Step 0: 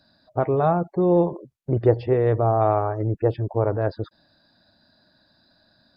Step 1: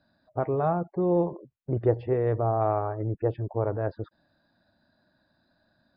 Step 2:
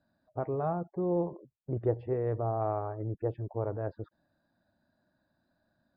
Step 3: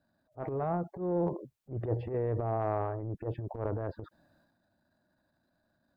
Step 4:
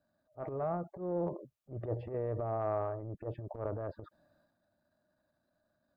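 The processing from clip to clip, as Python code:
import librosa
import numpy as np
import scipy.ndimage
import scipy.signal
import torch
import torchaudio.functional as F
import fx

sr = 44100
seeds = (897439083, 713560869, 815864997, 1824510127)

y1 = scipy.signal.sosfilt(scipy.signal.butter(2, 2600.0, 'lowpass', fs=sr, output='sos'), x)
y1 = y1 * librosa.db_to_amplitude(-5.5)
y2 = fx.high_shelf(y1, sr, hz=2400.0, db=-9.5)
y2 = y2 * librosa.db_to_amplitude(-5.5)
y3 = fx.transient(y2, sr, attack_db=-12, sustain_db=8)
y4 = fx.small_body(y3, sr, hz=(600.0, 1200.0), ring_ms=30, db=8)
y4 = y4 * librosa.db_to_amplitude(-5.5)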